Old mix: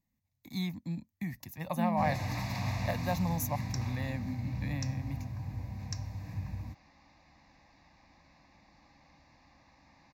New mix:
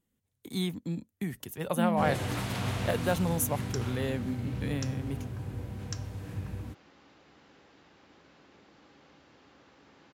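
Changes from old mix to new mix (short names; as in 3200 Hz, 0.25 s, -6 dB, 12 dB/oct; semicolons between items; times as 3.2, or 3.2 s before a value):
second sound: add HPF 89 Hz; master: remove fixed phaser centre 2100 Hz, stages 8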